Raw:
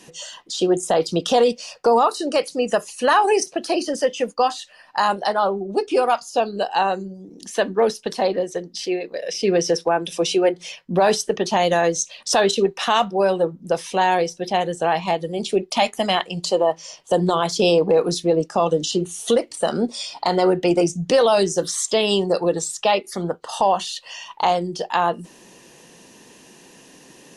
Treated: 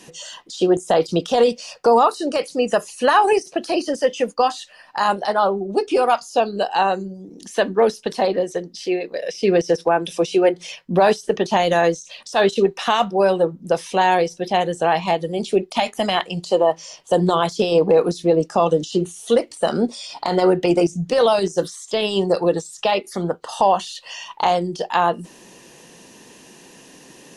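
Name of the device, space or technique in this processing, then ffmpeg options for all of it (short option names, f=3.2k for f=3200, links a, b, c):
de-esser from a sidechain: -filter_complex "[0:a]asplit=2[a][b];[b]highpass=f=5.1k:w=0.5412,highpass=f=5.1k:w=1.3066,apad=whole_len=1206970[c];[a][c]sidechaincompress=threshold=-36dB:ratio=8:attack=1.1:release=30,volume=2dB"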